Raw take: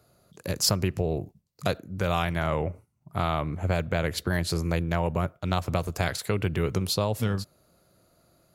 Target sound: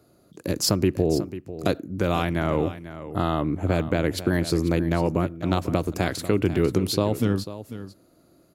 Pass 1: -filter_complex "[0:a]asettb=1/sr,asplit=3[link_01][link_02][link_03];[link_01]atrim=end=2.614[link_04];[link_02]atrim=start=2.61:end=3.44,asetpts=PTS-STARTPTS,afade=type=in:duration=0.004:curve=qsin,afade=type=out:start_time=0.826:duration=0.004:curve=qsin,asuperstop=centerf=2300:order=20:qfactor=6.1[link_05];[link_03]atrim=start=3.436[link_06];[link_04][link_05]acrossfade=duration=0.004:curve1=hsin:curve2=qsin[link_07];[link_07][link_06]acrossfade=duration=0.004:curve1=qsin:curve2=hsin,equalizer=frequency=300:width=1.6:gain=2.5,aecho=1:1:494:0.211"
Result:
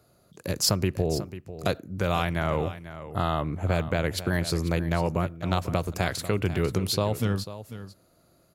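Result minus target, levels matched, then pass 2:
250 Hz band −3.0 dB
-filter_complex "[0:a]asettb=1/sr,asplit=3[link_01][link_02][link_03];[link_01]atrim=end=2.614[link_04];[link_02]atrim=start=2.61:end=3.44,asetpts=PTS-STARTPTS,afade=type=in:duration=0.004:curve=qsin,afade=type=out:start_time=0.826:duration=0.004:curve=qsin,asuperstop=centerf=2300:order=20:qfactor=6.1[link_05];[link_03]atrim=start=3.436[link_06];[link_04][link_05]acrossfade=duration=0.004:curve1=hsin:curve2=qsin[link_07];[link_07][link_06]acrossfade=duration=0.004:curve1=qsin:curve2=hsin,equalizer=frequency=300:width=1.6:gain=13,aecho=1:1:494:0.211"

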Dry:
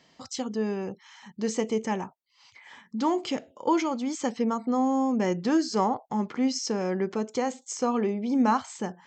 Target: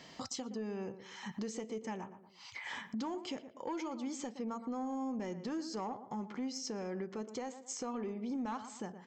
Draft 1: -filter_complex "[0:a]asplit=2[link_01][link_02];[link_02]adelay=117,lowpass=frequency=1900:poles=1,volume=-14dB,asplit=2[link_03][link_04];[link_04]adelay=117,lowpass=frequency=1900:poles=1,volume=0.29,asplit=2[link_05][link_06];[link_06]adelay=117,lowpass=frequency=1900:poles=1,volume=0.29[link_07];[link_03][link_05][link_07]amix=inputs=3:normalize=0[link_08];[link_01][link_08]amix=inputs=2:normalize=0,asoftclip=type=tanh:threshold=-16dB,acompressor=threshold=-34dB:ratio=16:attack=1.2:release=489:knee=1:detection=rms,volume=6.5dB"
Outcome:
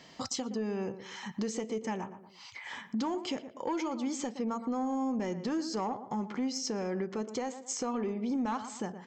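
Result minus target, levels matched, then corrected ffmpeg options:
downward compressor: peak gain reduction −6 dB
-filter_complex "[0:a]asplit=2[link_01][link_02];[link_02]adelay=117,lowpass=frequency=1900:poles=1,volume=-14dB,asplit=2[link_03][link_04];[link_04]adelay=117,lowpass=frequency=1900:poles=1,volume=0.29,asplit=2[link_05][link_06];[link_06]adelay=117,lowpass=frequency=1900:poles=1,volume=0.29[link_07];[link_03][link_05][link_07]amix=inputs=3:normalize=0[link_08];[link_01][link_08]amix=inputs=2:normalize=0,asoftclip=type=tanh:threshold=-16dB,acompressor=threshold=-40.5dB:ratio=16:attack=1.2:release=489:knee=1:detection=rms,volume=6.5dB"

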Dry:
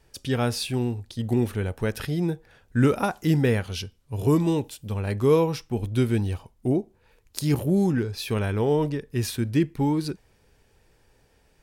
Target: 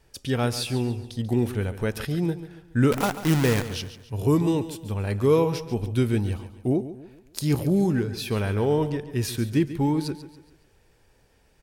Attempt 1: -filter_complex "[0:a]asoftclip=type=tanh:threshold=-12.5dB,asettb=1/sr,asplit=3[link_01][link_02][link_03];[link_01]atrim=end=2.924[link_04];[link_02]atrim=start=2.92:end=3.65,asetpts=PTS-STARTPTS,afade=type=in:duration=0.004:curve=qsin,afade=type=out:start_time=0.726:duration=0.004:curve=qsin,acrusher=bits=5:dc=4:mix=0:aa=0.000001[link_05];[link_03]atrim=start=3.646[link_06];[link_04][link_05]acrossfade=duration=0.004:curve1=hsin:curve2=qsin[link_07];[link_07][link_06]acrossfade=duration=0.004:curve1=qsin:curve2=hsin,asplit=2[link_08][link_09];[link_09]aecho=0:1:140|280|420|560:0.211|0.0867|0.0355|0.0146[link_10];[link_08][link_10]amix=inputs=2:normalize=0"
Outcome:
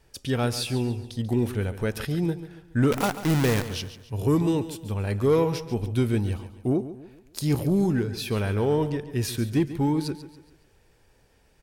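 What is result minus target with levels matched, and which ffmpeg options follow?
soft clipping: distortion +15 dB
-filter_complex "[0:a]asoftclip=type=tanh:threshold=-4dB,asettb=1/sr,asplit=3[link_01][link_02][link_03];[link_01]atrim=end=2.924[link_04];[link_02]atrim=start=2.92:end=3.65,asetpts=PTS-STARTPTS,afade=type=in:duration=0.004:curve=qsin,afade=type=out:start_time=0.726:duration=0.004:curve=qsin,acrusher=bits=5:dc=4:mix=0:aa=0.000001[link_05];[link_03]atrim=start=3.646[link_06];[link_04][link_05]acrossfade=duration=0.004:curve1=hsin:curve2=qsin[link_07];[link_07][link_06]acrossfade=duration=0.004:curve1=qsin:curve2=hsin,asplit=2[link_08][link_09];[link_09]aecho=0:1:140|280|420|560:0.211|0.0867|0.0355|0.0146[link_10];[link_08][link_10]amix=inputs=2:normalize=0"

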